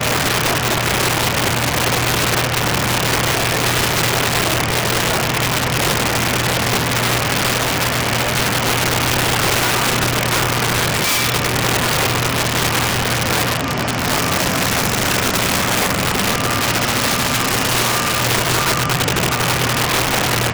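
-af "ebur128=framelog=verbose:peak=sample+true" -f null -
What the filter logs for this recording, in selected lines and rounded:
Integrated loudness:
  I:         -15.9 LUFS
  Threshold: -25.9 LUFS
Loudness range:
  LRA:         0.9 LU
  Threshold: -35.9 LUFS
  LRA low:   -16.4 LUFS
  LRA high:  -15.5 LUFS
Sample peak:
  Peak:       -9.4 dBFS
True peak:
  Peak:       -5.8 dBFS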